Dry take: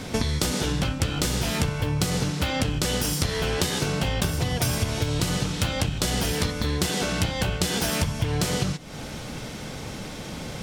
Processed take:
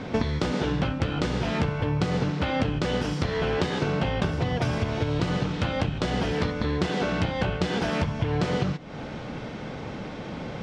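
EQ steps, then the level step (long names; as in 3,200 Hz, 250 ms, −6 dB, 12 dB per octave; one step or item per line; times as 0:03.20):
high-frequency loss of the air 130 metres
low-shelf EQ 100 Hz −9.5 dB
high-shelf EQ 3,300 Hz −11.5 dB
+3.0 dB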